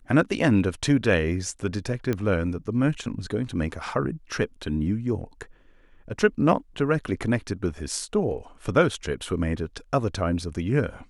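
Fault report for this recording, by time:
2.13 pop -14 dBFS

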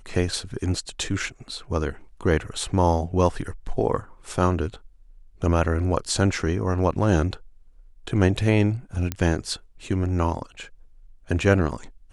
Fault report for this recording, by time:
9.12 pop -11 dBFS

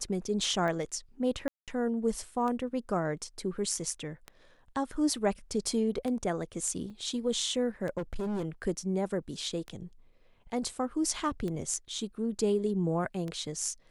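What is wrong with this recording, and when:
tick 33 1/3 rpm -24 dBFS
1.48–1.68 gap 0.197 s
6.9 gap 3.8 ms
7.97–8.45 clipped -30 dBFS

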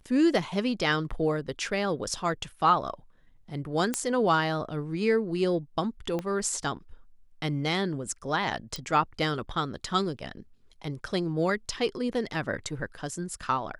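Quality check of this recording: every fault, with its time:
3.94 pop -12 dBFS
6.19 pop -19 dBFS
8.76 pop

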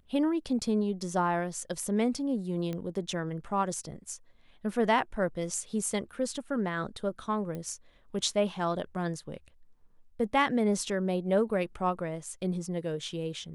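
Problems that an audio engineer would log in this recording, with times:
2.73 pop -23 dBFS
7.55 pop -26 dBFS

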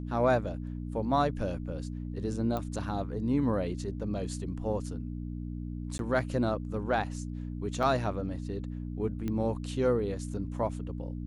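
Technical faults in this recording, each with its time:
hum 60 Hz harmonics 5 -37 dBFS
2.57 pop -21 dBFS
5.98–5.99 gap 12 ms
7.83 gap 3.4 ms
9.28 pop -22 dBFS

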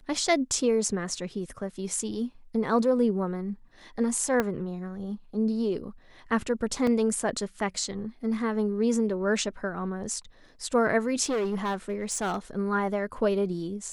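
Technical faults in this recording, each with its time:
4.4 pop -12 dBFS
6.87 gap 2.8 ms
11.24–12.38 clipped -24.5 dBFS

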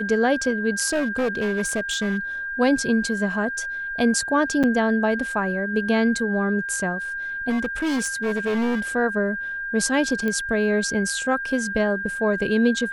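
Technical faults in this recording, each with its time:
tone 1600 Hz -27 dBFS
0.88–2.18 clipped -19 dBFS
4.63–4.64 gap 6.8 ms
7.49–8.82 clipped -20 dBFS
10.28 pop -14 dBFS

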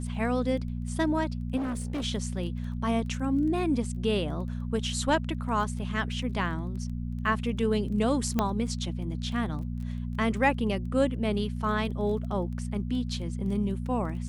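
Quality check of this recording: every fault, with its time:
crackle 11/s -38 dBFS
hum 60 Hz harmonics 4 -33 dBFS
1.56–2.05 clipped -28 dBFS
8.39 pop -12 dBFS

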